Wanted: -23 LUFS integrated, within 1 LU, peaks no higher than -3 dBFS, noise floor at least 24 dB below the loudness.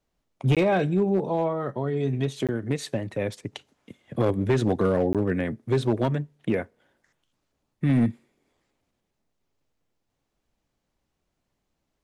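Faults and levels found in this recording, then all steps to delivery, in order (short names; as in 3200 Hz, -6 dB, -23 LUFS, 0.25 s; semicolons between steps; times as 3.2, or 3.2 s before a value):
clipped 0.9%; flat tops at -15.5 dBFS; dropouts 3; longest dropout 17 ms; loudness -25.5 LUFS; peak -15.5 dBFS; loudness target -23.0 LUFS
-> clip repair -15.5 dBFS; interpolate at 0.55/2.47/5.13, 17 ms; gain +2.5 dB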